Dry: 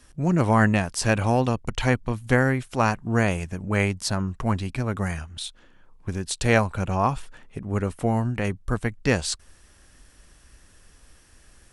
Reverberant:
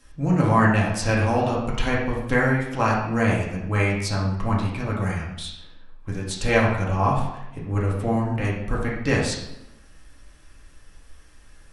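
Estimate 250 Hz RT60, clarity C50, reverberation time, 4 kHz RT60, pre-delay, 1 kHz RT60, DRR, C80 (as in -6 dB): 1.1 s, 3.0 dB, 0.90 s, 0.65 s, 4 ms, 0.85 s, -4.5 dB, 6.0 dB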